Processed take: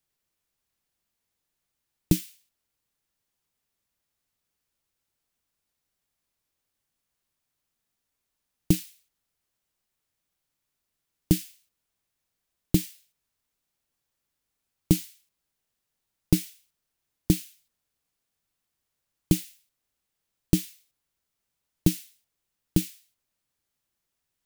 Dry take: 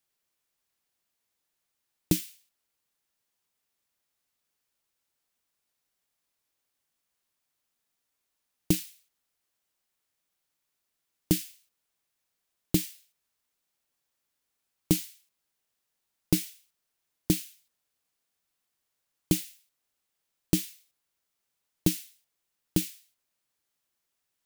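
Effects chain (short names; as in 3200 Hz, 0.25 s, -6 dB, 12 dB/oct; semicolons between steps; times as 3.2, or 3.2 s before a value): low shelf 200 Hz +10 dB; gain -1 dB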